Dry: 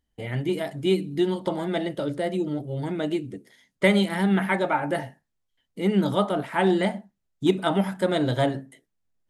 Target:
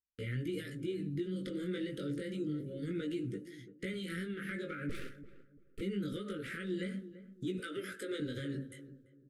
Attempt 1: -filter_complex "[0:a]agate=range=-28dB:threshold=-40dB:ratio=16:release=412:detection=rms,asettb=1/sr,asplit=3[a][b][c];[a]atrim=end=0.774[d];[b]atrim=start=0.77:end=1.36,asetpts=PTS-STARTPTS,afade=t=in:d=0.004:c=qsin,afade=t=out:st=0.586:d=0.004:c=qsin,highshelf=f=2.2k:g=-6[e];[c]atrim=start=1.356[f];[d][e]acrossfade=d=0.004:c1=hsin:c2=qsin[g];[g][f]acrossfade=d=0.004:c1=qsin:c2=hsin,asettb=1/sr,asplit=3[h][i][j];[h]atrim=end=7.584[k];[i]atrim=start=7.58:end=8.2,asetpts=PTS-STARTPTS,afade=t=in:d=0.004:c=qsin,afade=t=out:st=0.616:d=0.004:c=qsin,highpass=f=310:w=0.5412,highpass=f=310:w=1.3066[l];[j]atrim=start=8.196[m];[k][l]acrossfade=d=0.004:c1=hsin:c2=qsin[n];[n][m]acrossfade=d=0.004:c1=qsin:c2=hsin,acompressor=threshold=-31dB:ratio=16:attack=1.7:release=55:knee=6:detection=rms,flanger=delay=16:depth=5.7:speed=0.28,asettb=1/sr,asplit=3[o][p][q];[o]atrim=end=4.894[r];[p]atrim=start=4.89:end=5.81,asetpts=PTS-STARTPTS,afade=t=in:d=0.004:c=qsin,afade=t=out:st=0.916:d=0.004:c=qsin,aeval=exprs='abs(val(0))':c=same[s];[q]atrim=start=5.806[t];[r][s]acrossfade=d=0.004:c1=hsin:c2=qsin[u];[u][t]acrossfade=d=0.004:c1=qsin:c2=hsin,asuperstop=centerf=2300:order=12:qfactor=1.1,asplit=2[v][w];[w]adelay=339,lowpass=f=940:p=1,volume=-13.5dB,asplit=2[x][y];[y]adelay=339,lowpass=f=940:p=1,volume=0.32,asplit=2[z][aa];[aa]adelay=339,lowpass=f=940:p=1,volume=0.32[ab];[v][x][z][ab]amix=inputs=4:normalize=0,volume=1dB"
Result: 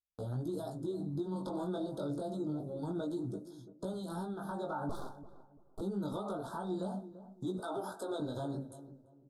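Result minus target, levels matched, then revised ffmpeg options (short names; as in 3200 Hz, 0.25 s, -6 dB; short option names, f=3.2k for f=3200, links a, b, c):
1000 Hz band +11.5 dB
-filter_complex "[0:a]agate=range=-28dB:threshold=-40dB:ratio=16:release=412:detection=rms,asettb=1/sr,asplit=3[a][b][c];[a]atrim=end=0.774[d];[b]atrim=start=0.77:end=1.36,asetpts=PTS-STARTPTS,afade=t=in:d=0.004:c=qsin,afade=t=out:st=0.586:d=0.004:c=qsin,highshelf=f=2.2k:g=-6[e];[c]atrim=start=1.356[f];[d][e]acrossfade=d=0.004:c1=hsin:c2=qsin[g];[g][f]acrossfade=d=0.004:c1=qsin:c2=hsin,asettb=1/sr,asplit=3[h][i][j];[h]atrim=end=7.584[k];[i]atrim=start=7.58:end=8.2,asetpts=PTS-STARTPTS,afade=t=in:d=0.004:c=qsin,afade=t=out:st=0.616:d=0.004:c=qsin,highpass=f=310:w=0.5412,highpass=f=310:w=1.3066[l];[j]atrim=start=8.196[m];[k][l]acrossfade=d=0.004:c1=hsin:c2=qsin[n];[n][m]acrossfade=d=0.004:c1=qsin:c2=hsin,acompressor=threshold=-31dB:ratio=16:attack=1.7:release=55:knee=6:detection=rms,flanger=delay=16:depth=5.7:speed=0.28,asettb=1/sr,asplit=3[o][p][q];[o]atrim=end=4.894[r];[p]atrim=start=4.89:end=5.81,asetpts=PTS-STARTPTS,afade=t=in:d=0.004:c=qsin,afade=t=out:st=0.916:d=0.004:c=qsin,aeval=exprs='abs(val(0))':c=same[s];[q]atrim=start=5.806[t];[r][s]acrossfade=d=0.004:c1=hsin:c2=qsin[u];[u][t]acrossfade=d=0.004:c1=qsin:c2=hsin,asuperstop=centerf=830:order=12:qfactor=1.1,asplit=2[v][w];[w]adelay=339,lowpass=f=940:p=1,volume=-13.5dB,asplit=2[x][y];[y]adelay=339,lowpass=f=940:p=1,volume=0.32,asplit=2[z][aa];[aa]adelay=339,lowpass=f=940:p=1,volume=0.32[ab];[v][x][z][ab]amix=inputs=4:normalize=0,volume=1dB"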